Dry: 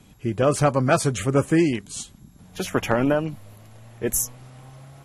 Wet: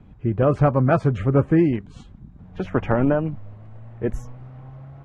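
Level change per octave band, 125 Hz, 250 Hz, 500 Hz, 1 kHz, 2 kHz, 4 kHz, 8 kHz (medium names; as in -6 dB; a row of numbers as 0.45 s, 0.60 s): +4.5 dB, +2.0 dB, +0.5 dB, -0.5 dB, -3.5 dB, under -10 dB, under -25 dB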